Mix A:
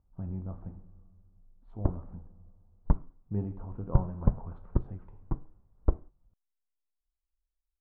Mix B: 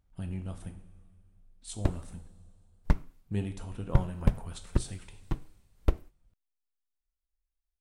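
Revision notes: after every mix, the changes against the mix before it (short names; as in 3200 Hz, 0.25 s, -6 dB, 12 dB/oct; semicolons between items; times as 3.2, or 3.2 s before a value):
master: remove Chebyshev low-pass 1100 Hz, order 3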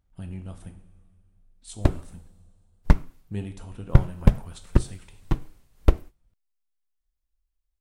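background +8.0 dB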